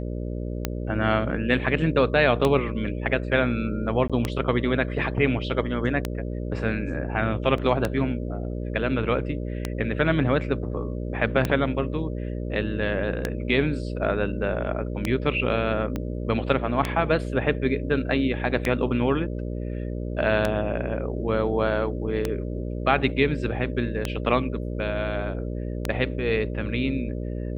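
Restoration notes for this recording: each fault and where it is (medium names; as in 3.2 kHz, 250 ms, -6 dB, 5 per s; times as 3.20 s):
buzz 60 Hz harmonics 10 -30 dBFS
tick 33 1/3 rpm -9 dBFS
4.08–4.10 s: dropout 16 ms
7.58 s: dropout 2.4 ms
15.96 s: pop -16 dBFS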